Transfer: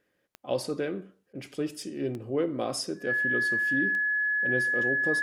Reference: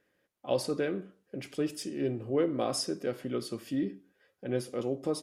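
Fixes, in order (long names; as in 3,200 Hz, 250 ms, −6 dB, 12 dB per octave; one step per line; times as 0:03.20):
click removal
notch filter 1,700 Hz, Q 30
repair the gap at 0:01.33, 18 ms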